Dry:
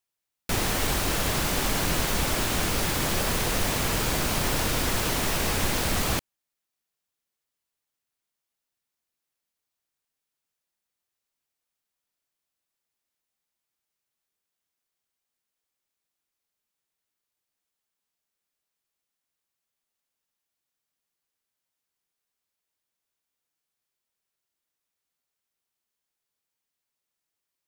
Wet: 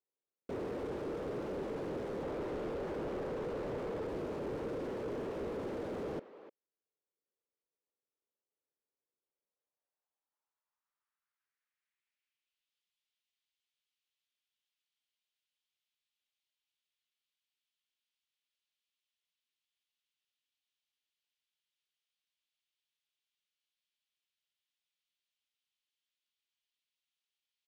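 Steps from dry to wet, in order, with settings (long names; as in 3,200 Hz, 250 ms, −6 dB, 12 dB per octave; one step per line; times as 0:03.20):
parametric band 700 Hz −6.5 dB 0.24 octaves
in parallel at −0.5 dB: brickwall limiter −24 dBFS, peak gain reduction 11.5 dB
0:02.23–0:04.06: on the sum: mid-hump overdrive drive 18 dB, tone 2,400 Hz, clips at −11 dBFS
band-pass filter sweep 450 Hz → 3,200 Hz, 0:09.29–0:12.71
far-end echo of a speakerphone 300 ms, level −15 dB
slew-rate limiting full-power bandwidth 10 Hz
level −3 dB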